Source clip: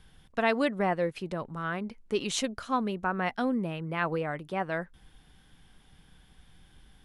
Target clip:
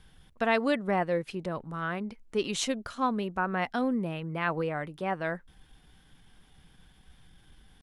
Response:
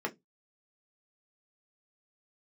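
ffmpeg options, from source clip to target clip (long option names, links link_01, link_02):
-af "atempo=0.9"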